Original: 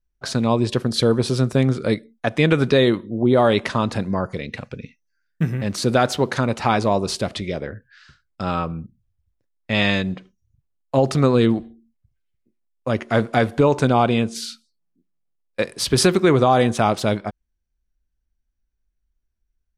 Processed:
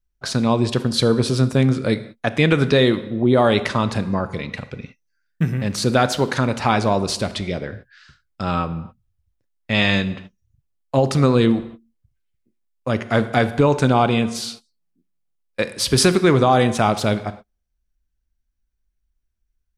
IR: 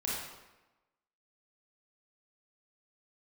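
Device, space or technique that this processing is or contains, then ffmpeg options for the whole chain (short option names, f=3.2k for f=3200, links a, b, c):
keyed gated reverb: -filter_complex "[0:a]equalizer=f=480:t=o:w=2.2:g=-2.5,asplit=3[a][b][c];[1:a]atrim=start_sample=2205[d];[b][d]afir=irnorm=-1:irlink=0[e];[c]apad=whole_len=871941[f];[e][f]sidechaingate=range=-43dB:threshold=-40dB:ratio=16:detection=peak,volume=-16dB[g];[a][g]amix=inputs=2:normalize=0,volume=1dB"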